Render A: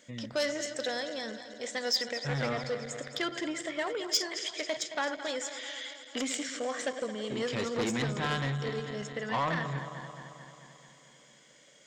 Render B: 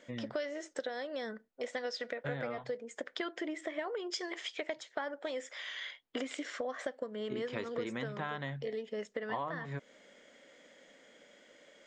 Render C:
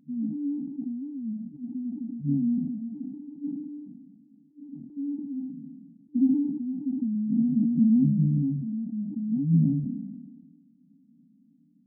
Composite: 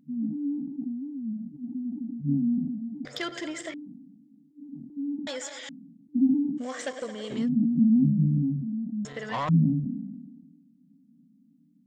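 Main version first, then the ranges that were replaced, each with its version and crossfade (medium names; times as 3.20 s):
C
3.05–3.74 s: from A
5.27–5.69 s: from A
6.65–7.41 s: from A, crossfade 0.16 s
9.05–9.49 s: from A
not used: B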